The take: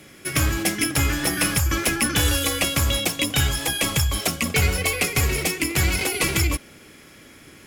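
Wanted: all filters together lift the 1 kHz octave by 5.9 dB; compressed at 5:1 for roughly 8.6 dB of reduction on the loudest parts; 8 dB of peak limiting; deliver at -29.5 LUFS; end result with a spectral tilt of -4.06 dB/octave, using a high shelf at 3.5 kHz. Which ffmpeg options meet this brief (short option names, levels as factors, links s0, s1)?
-af "equalizer=f=1000:t=o:g=8.5,highshelf=f=3500:g=-7.5,acompressor=threshold=0.0501:ratio=5,volume=1.26,alimiter=limit=0.106:level=0:latency=1"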